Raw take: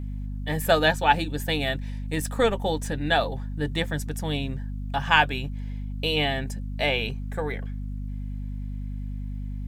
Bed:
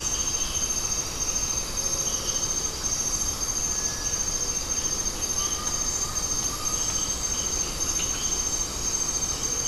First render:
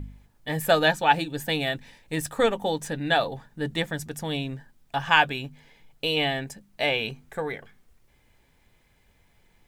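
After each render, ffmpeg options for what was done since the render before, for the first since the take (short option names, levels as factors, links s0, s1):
-af "bandreject=f=50:t=h:w=4,bandreject=f=100:t=h:w=4,bandreject=f=150:t=h:w=4,bandreject=f=200:t=h:w=4,bandreject=f=250:t=h:w=4"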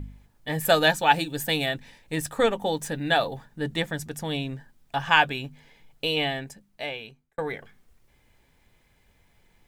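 -filter_complex "[0:a]asettb=1/sr,asplit=3[s0][s1][s2];[s0]atrim=end=0.654[s3];[s1]atrim=start=0.65:end=1.66,asetpts=PTS-STARTPTS,afade=t=in:d=0.004:c=qsin,afade=t=out:st=1.006:d=0.004:c=qsin,highshelf=f=5000:g=7.5[s4];[s2]atrim=start=1.656[s5];[s3][s4]acrossfade=d=0.004:c1=hsin:c2=qsin[s6];[s6][s5]acrossfade=d=0.004:c1=qsin:c2=hsin,asettb=1/sr,asplit=3[s7][s8][s9];[s7]atrim=end=2.724[s10];[s8]atrim=start=2.72:end=3.45,asetpts=PTS-STARTPTS,afade=t=in:d=0.004:c=qsin,afade=t=out:st=0.726:d=0.004:c=qsin,highshelf=f=11000:g=7[s11];[s9]atrim=start=3.446[s12];[s10][s11]acrossfade=d=0.004:c1=hsin:c2=qsin[s13];[s13][s12]acrossfade=d=0.004:c1=qsin:c2=hsin,asplit=2[s14][s15];[s14]atrim=end=7.38,asetpts=PTS-STARTPTS,afade=t=out:st=6.05:d=1.33[s16];[s15]atrim=start=7.38,asetpts=PTS-STARTPTS,afade=t=in:d=0.004:c=hsin[s17];[s16][s17]concat=n=2:v=0:a=1"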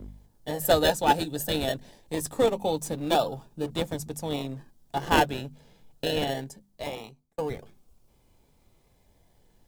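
-filter_complex "[0:a]acrossover=split=200|1200|3200[s0][s1][s2][s3];[s0]aeval=exprs='0.0141*(abs(mod(val(0)/0.0141+3,4)-2)-1)':c=same[s4];[s2]acrusher=samples=30:mix=1:aa=0.000001:lfo=1:lforange=18:lforate=0.22[s5];[s4][s1][s5][s3]amix=inputs=4:normalize=0"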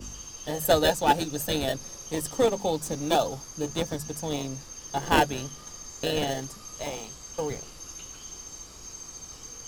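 -filter_complex "[1:a]volume=0.168[s0];[0:a][s0]amix=inputs=2:normalize=0"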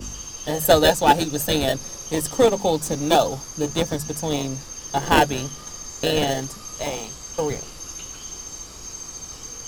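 -af "volume=2.11,alimiter=limit=0.794:level=0:latency=1"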